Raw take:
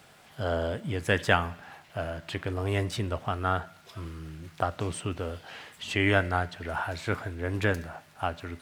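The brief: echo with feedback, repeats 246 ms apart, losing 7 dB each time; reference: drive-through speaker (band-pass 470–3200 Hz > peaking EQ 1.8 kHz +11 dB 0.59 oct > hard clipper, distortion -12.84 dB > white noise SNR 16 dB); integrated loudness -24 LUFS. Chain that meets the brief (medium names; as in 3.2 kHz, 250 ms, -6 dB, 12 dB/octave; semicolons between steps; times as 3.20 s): band-pass 470–3200 Hz; peaking EQ 1.8 kHz +11 dB 0.59 oct; feedback delay 246 ms, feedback 45%, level -7 dB; hard clipper -14.5 dBFS; white noise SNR 16 dB; trim +4 dB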